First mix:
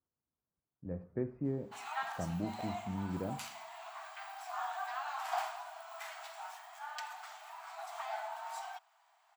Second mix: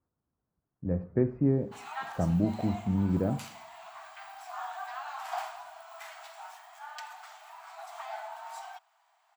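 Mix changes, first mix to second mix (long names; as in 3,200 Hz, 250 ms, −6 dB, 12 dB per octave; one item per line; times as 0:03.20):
speech +8.0 dB
master: add low-shelf EQ 280 Hz +4.5 dB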